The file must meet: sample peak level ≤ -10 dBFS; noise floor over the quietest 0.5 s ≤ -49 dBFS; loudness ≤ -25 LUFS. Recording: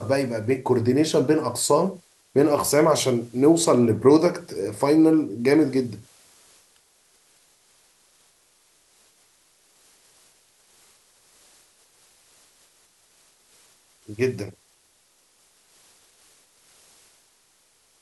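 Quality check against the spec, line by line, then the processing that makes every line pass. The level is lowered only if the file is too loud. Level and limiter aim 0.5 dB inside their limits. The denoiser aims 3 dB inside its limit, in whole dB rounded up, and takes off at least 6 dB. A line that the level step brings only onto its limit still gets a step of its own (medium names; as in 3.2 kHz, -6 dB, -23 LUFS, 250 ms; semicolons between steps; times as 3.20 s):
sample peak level -4.5 dBFS: fail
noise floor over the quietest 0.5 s -62 dBFS: pass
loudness -21.0 LUFS: fail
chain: trim -4.5 dB; peak limiter -10.5 dBFS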